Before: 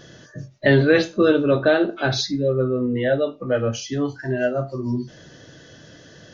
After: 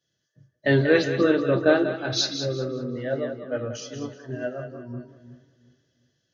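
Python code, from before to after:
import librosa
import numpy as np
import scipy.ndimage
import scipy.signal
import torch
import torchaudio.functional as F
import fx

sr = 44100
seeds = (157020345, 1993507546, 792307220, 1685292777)

y = scipy.signal.sosfilt(scipy.signal.butter(2, 71.0, 'highpass', fs=sr, output='sos'), x)
y = fx.echo_split(y, sr, split_hz=390.0, low_ms=363, high_ms=190, feedback_pct=52, wet_db=-6.0)
y = fx.band_widen(y, sr, depth_pct=100)
y = y * librosa.db_to_amplitude(-7.5)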